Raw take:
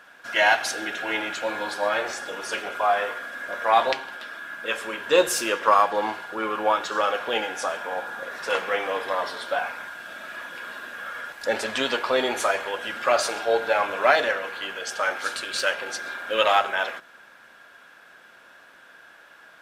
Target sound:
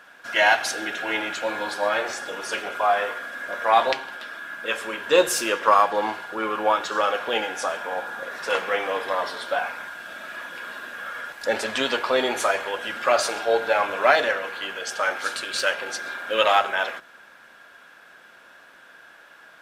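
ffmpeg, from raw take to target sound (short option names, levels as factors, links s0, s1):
-af "bandreject=f=60:t=h:w=6,bandreject=f=120:t=h:w=6,volume=1.12"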